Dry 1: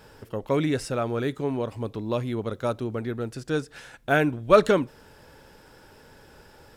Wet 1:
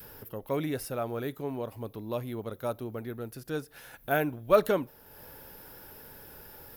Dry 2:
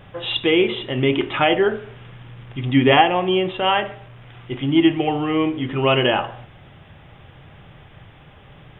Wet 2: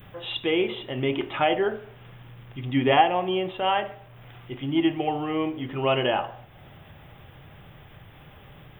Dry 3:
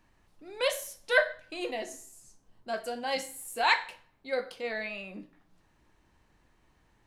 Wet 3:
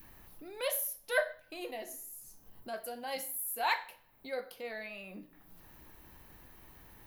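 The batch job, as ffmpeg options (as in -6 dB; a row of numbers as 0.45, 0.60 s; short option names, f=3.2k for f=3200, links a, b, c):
-af "aexciter=amount=6.3:drive=9.4:freq=11k,acompressor=mode=upward:threshold=-32dB:ratio=2.5,adynamicequalizer=threshold=0.0251:dfrequency=710:dqfactor=1.5:tfrequency=710:tqfactor=1.5:attack=5:release=100:ratio=0.375:range=2.5:mode=boostabove:tftype=bell,volume=-8dB"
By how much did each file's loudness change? -6.0, -6.0, -5.5 LU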